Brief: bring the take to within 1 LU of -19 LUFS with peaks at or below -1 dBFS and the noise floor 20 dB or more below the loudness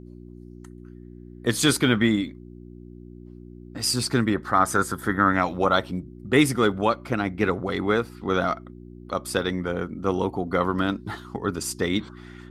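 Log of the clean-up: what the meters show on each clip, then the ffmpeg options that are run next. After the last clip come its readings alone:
hum 60 Hz; harmonics up to 360 Hz; hum level -41 dBFS; loudness -24.5 LUFS; peak -5.5 dBFS; loudness target -19.0 LUFS
-> -af "bandreject=f=60:t=h:w=4,bandreject=f=120:t=h:w=4,bandreject=f=180:t=h:w=4,bandreject=f=240:t=h:w=4,bandreject=f=300:t=h:w=4,bandreject=f=360:t=h:w=4"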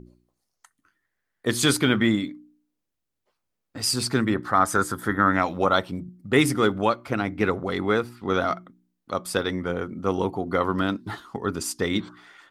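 hum none; loudness -24.5 LUFS; peak -5.5 dBFS; loudness target -19.0 LUFS
-> -af "volume=5.5dB,alimiter=limit=-1dB:level=0:latency=1"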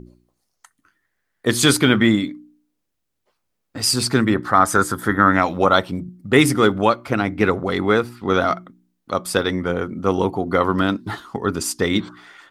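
loudness -19.0 LUFS; peak -1.0 dBFS; noise floor -75 dBFS

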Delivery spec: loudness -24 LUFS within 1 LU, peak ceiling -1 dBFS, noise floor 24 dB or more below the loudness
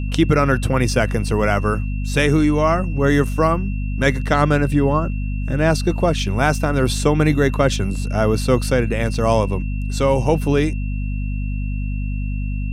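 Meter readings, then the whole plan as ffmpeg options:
hum 50 Hz; harmonics up to 250 Hz; hum level -20 dBFS; steady tone 2700 Hz; tone level -39 dBFS; loudness -19.0 LUFS; peak -1.5 dBFS; loudness target -24.0 LUFS
-> -af "bandreject=f=50:t=h:w=6,bandreject=f=100:t=h:w=6,bandreject=f=150:t=h:w=6,bandreject=f=200:t=h:w=6,bandreject=f=250:t=h:w=6"
-af "bandreject=f=2.7k:w=30"
-af "volume=-5dB"

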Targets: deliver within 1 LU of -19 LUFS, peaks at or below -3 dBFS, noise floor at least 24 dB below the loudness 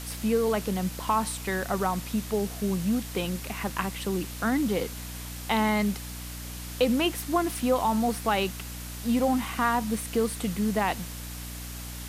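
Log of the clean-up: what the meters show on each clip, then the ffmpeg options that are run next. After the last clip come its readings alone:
hum 60 Hz; harmonics up to 300 Hz; hum level -37 dBFS; noise floor -38 dBFS; noise floor target -53 dBFS; loudness -28.5 LUFS; peak -11.0 dBFS; loudness target -19.0 LUFS
-> -af "bandreject=f=60:t=h:w=4,bandreject=f=120:t=h:w=4,bandreject=f=180:t=h:w=4,bandreject=f=240:t=h:w=4,bandreject=f=300:t=h:w=4"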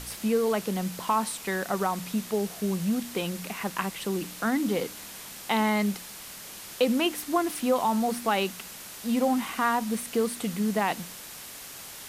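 hum none; noise floor -43 dBFS; noise floor target -52 dBFS
-> -af "afftdn=nr=9:nf=-43"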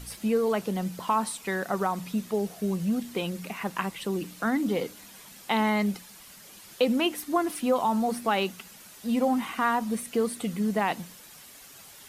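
noise floor -49 dBFS; noise floor target -52 dBFS
-> -af "afftdn=nr=6:nf=-49"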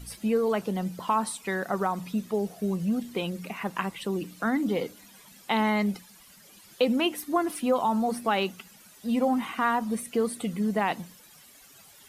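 noise floor -54 dBFS; loudness -28.5 LUFS; peak -11.0 dBFS; loudness target -19.0 LUFS
-> -af "volume=9.5dB,alimiter=limit=-3dB:level=0:latency=1"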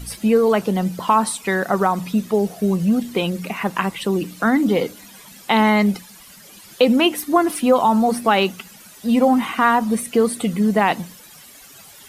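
loudness -19.0 LUFS; peak -3.0 dBFS; noise floor -44 dBFS

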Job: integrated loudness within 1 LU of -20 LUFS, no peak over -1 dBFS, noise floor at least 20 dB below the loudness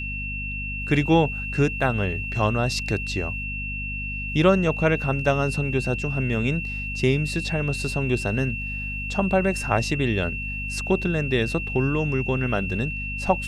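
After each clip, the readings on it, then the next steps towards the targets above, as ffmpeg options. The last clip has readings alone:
hum 50 Hz; harmonics up to 250 Hz; hum level -30 dBFS; steady tone 2700 Hz; tone level -30 dBFS; loudness -24.0 LUFS; peak -5.5 dBFS; loudness target -20.0 LUFS
-> -af "bandreject=f=50:t=h:w=4,bandreject=f=100:t=h:w=4,bandreject=f=150:t=h:w=4,bandreject=f=200:t=h:w=4,bandreject=f=250:t=h:w=4"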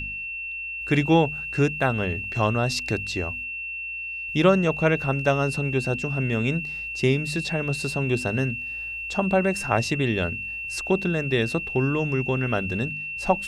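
hum none; steady tone 2700 Hz; tone level -30 dBFS
-> -af "bandreject=f=2.7k:w=30"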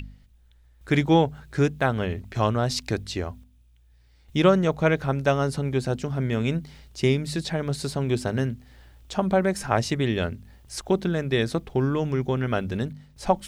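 steady tone none; loudness -25.0 LUFS; peak -6.5 dBFS; loudness target -20.0 LUFS
-> -af "volume=5dB"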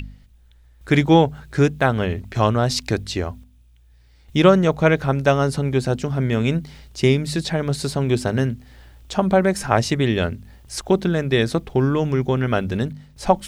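loudness -20.0 LUFS; peak -1.5 dBFS; noise floor -52 dBFS

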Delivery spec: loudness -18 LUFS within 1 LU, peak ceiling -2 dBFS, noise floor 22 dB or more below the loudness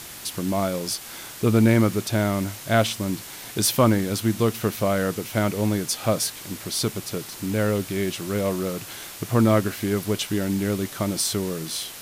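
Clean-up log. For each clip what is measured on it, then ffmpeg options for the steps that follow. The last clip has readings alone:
noise floor -39 dBFS; noise floor target -46 dBFS; loudness -24.0 LUFS; peak -5.0 dBFS; loudness target -18.0 LUFS
-> -af "afftdn=nr=7:nf=-39"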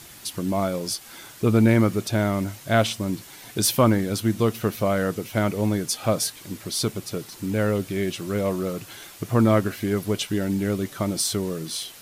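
noise floor -45 dBFS; noise floor target -46 dBFS
-> -af "afftdn=nr=6:nf=-45"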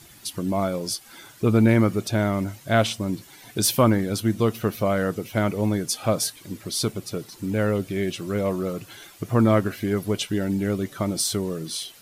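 noise floor -49 dBFS; loudness -24.0 LUFS; peak -5.5 dBFS; loudness target -18.0 LUFS
-> -af "volume=6dB,alimiter=limit=-2dB:level=0:latency=1"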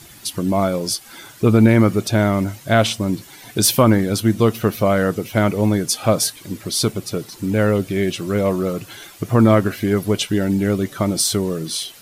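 loudness -18.5 LUFS; peak -2.0 dBFS; noise floor -43 dBFS

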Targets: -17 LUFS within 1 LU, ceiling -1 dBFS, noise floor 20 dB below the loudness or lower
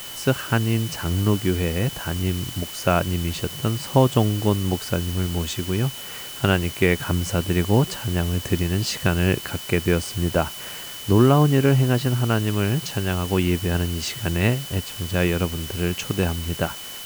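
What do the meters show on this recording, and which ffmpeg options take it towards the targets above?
steady tone 3000 Hz; tone level -38 dBFS; noise floor -35 dBFS; noise floor target -43 dBFS; loudness -22.5 LUFS; peak -3.5 dBFS; loudness target -17.0 LUFS
-> -af "bandreject=f=3k:w=30"
-af "afftdn=nr=8:nf=-35"
-af "volume=5.5dB,alimiter=limit=-1dB:level=0:latency=1"

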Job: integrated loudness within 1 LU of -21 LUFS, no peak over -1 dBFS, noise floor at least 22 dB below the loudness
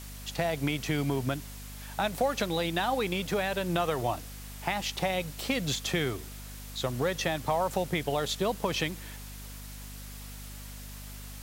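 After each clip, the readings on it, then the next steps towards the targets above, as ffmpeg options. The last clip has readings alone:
hum 50 Hz; harmonics up to 250 Hz; hum level -42 dBFS; noise floor -43 dBFS; noise floor target -53 dBFS; loudness -30.5 LUFS; peak -14.0 dBFS; loudness target -21.0 LUFS
-> -af "bandreject=f=50:t=h:w=4,bandreject=f=100:t=h:w=4,bandreject=f=150:t=h:w=4,bandreject=f=200:t=h:w=4,bandreject=f=250:t=h:w=4"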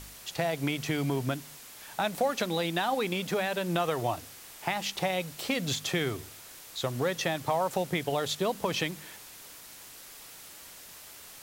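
hum none; noise floor -49 dBFS; noise floor target -53 dBFS
-> -af "afftdn=nr=6:nf=-49"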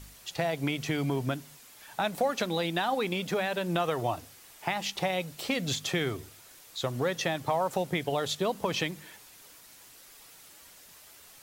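noise floor -53 dBFS; loudness -31.0 LUFS; peak -14.0 dBFS; loudness target -21.0 LUFS
-> -af "volume=10dB"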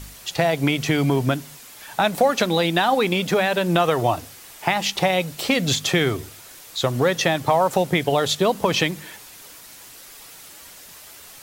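loudness -21.0 LUFS; peak -4.0 dBFS; noise floor -43 dBFS

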